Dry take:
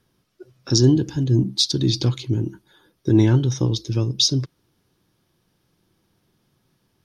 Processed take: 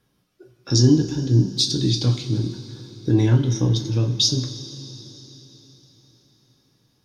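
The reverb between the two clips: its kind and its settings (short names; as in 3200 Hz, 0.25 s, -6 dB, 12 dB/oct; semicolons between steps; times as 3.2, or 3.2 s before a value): two-slope reverb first 0.28 s, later 4.2 s, from -18 dB, DRR 2 dB; gain -2.5 dB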